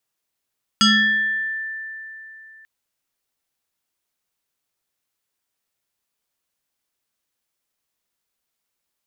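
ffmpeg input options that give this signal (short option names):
-f lavfi -i "aevalsrc='0.299*pow(10,-3*t/3.25)*sin(2*PI*1770*t+2.9*pow(10,-3*t/0.96)*sin(2*PI*0.88*1770*t))':d=1.84:s=44100"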